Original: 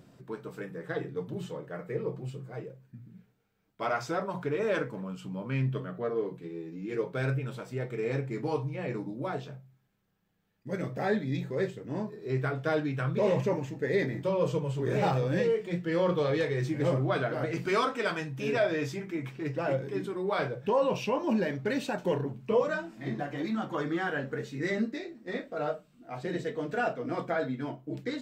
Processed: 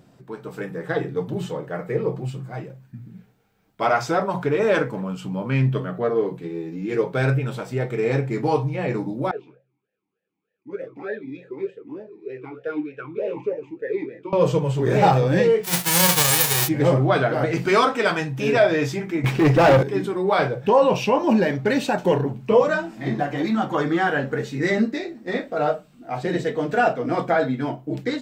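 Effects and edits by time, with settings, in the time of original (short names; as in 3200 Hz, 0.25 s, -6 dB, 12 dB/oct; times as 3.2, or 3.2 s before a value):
2.25–2.99 bell 450 Hz -9.5 dB 0.48 oct
9.31–14.33 vowel sweep e-u 3.3 Hz
15.63–16.67 spectral whitening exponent 0.1
19.24–19.83 sample leveller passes 3
whole clip: bell 790 Hz +5 dB 0.29 oct; AGC gain up to 7 dB; gain +2.5 dB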